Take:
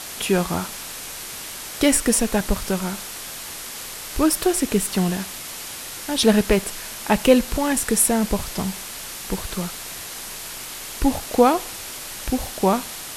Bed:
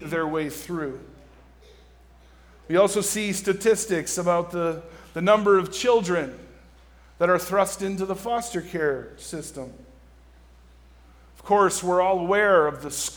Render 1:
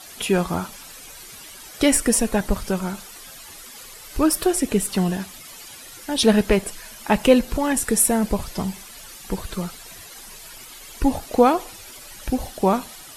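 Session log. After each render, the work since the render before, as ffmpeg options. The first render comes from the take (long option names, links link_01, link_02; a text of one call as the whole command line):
ffmpeg -i in.wav -af "afftdn=noise_reduction=12:noise_floor=-35" out.wav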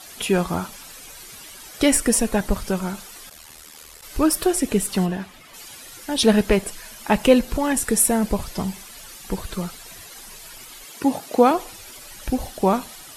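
ffmpeg -i in.wav -filter_complex "[0:a]asplit=3[link_01][link_02][link_03];[link_01]afade=type=out:start_time=3.29:duration=0.02[link_04];[link_02]aeval=exprs='val(0)*sin(2*PI*39*n/s)':channel_layout=same,afade=type=in:start_time=3.29:duration=0.02,afade=type=out:start_time=4.01:duration=0.02[link_05];[link_03]afade=type=in:start_time=4.01:duration=0.02[link_06];[link_04][link_05][link_06]amix=inputs=3:normalize=0,asplit=3[link_07][link_08][link_09];[link_07]afade=type=out:start_time=5.05:duration=0.02[link_10];[link_08]bass=frequency=250:gain=-2,treble=frequency=4000:gain=-12,afade=type=in:start_time=5.05:duration=0.02,afade=type=out:start_time=5.53:duration=0.02[link_11];[link_09]afade=type=in:start_time=5.53:duration=0.02[link_12];[link_10][link_11][link_12]amix=inputs=3:normalize=0,asettb=1/sr,asplit=3[link_13][link_14][link_15];[link_13]atrim=end=10.844[link_16];[link_14]atrim=start=10.84:end=11.51,asetpts=PTS-STARTPTS,afade=type=in:duration=0.004:curve=qsin,afade=type=out:start_time=0.666:duration=0.004:curve=qsin,highpass=frequency=140:width=0.5412,highpass=frequency=140:width=1.3066[link_17];[link_15]atrim=start=11.506[link_18];[link_16][link_17]acrossfade=duration=0.004:curve1=hsin:curve2=qsin[link_19];[link_19][link_18]acrossfade=duration=0.004:curve1=qsin:curve2=hsin" out.wav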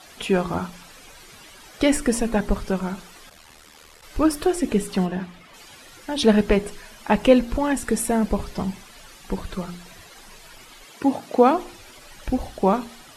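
ffmpeg -i in.wav -af "aemphasis=mode=reproduction:type=50kf,bandreject=frequency=58.56:width_type=h:width=4,bandreject=frequency=117.12:width_type=h:width=4,bandreject=frequency=175.68:width_type=h:width=4,bandreject=frequency=234.24:width_type=h:width=4,bandreject=frequency=292.8:width_type=h:width=4,bandreject=frequency=351.36:width_type=h:width=4,bandreject=frequency=409.92:width_type=h:width=4" out.wav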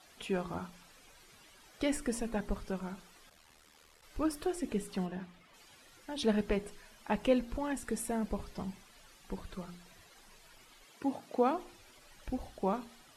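ffmpeg -i in.wav -af "volume=-13.5dB" out.wav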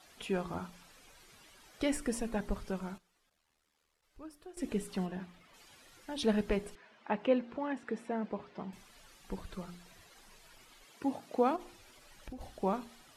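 ffmpeg -i in.wav -filter_complex "[0:a]asettb=1/sr,asplit=3[link_01][link_02][link_03];[link_01]atrim=end=6.754[link_04];[link_02]atrim=start=6.75:end=8.73,asetpts=PTS-STARTPTS,afade=type=in:duration=0.004:curve=qsin,afade=type=out:start_time=1.976:duration=0.004:curve=qsin,highpass=210,lowpass=2700[link_05];[link_03]atrim=start=8.726[link_06];[link_04][link_05]acrossfade=duration=0.004:curve1=hsin:curve2=qsin[link_07];[link_07][link_06]acrossfade=duration=0.004:curve1=qsin:curve2=hsin,asettb=1/sr,asplit=3[link_08][link_09][link_10];[link_08]atrim=end=11.564[link_11];[link_09]atrim=start=11.56:end=12.41,asetpts=PTS-STARTPTS,afade=type=in:duration=0.004:curve=qsin,afade=type=out:start_time=0.846:duration=0.004:curve=qsin,acompressor=threshold=-41dB:ratio=6:attack=3.2:release=140:knee=1:detection=peak[link_12];[link_10]atrim=start=12.406[link_13];[link_11][link_12]acrossfade=duration=0.004:curve1=hsin:curve2=qsin[link_14];[link_14][link_13]acrossfade=duration=0.004:curve1=qsin:curve2=hsin,asplit=3[link_15][link_16][link_17];[link_15]atrim=end=2.98,asetpts=PTS-STARTPTS,afade=type=out:start_time=2.81:duration=0.17:curve=log:silence=0.149624[link_18];[link_16]atrim=start=2.98:end=4.57,asetpts=PTS-STARTPTS,volume=-16.5dB[link_19];[link_17]atrim=start=4.57,asetpts=PTS-STARTPTS,afade=type=in:duration=0.17:curve=log:silence=0.149624[link_20];[link_18][link_19][link_20]concat=n=3:v=0:a=1" out.wav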